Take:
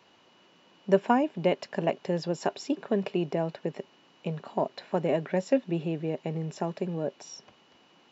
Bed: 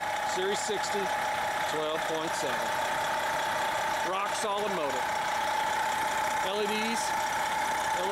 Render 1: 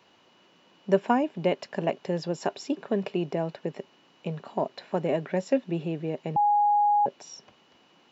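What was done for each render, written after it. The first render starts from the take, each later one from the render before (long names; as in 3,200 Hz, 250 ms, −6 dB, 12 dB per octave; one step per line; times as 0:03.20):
0:06.36–0:07.06: beep over 827 Hz −18.5 dBFS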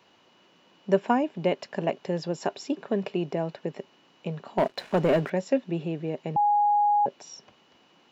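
0:04.58–0:05.30: leveller curve on the samples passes 2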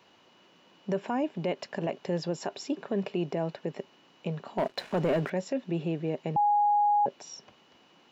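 brickwall limiter −20.5 dBFS, peak gain reduction 10.5 dB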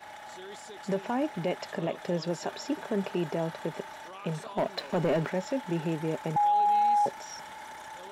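mix in bed −14.5 dB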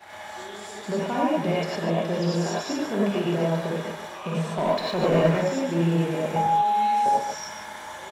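single-tap delay 143 ms −8 dB
reverb whose tail is shaped and stops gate 130 ms rising, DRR −5.5 dB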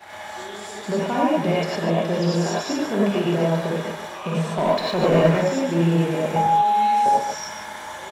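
level +3.5 dB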